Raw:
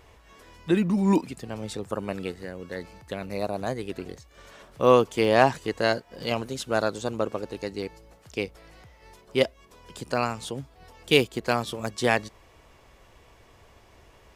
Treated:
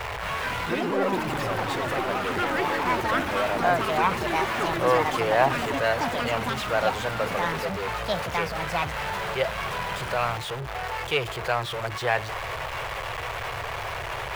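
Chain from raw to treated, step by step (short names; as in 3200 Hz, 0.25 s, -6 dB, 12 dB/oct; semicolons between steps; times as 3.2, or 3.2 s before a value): zero-crossing step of -21 dBFS; resonant low shelf 180 Hz +12 dB, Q 3; soft clip -5.5 dBFS, distortion -23 dB; echoes that change speed 0.225 s, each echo +6 st, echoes 3; three-band isolator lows -24 dB, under 420 Hz, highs -16 dB, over 3000 Hz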